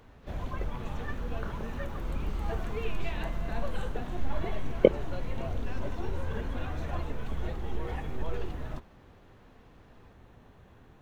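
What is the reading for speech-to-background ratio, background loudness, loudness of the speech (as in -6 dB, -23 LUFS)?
8.5 dB, -37.5 LUFS, -29.0 LUFS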